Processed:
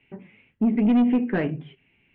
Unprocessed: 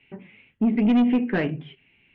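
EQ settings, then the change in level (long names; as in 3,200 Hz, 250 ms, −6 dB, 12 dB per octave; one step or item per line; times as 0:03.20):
low-pass filter 1,900 Hz 6 dB per octave
0.0 dB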